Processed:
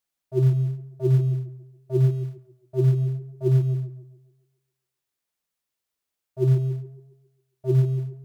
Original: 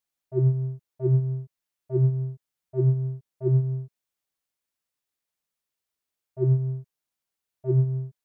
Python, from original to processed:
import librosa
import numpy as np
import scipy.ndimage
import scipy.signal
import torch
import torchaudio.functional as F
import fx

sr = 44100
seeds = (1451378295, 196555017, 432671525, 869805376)

p1 = fx.quant_float(x, sr, bits=2)
p2 = x + F.gain(torch.from_numpy(p1), -12.0).numpy()
y = fx.echo_tape(p2, sr, ms=138, feedback_pct=55, wet_db=-12.5, lp_hz=1000.0, drive_db=7.0, wow_cents=22)